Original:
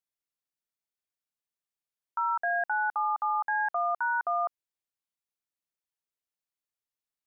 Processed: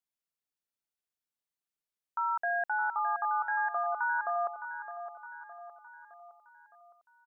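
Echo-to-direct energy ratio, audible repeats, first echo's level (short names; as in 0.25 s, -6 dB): -9.0 dB, 5, -10.5 dB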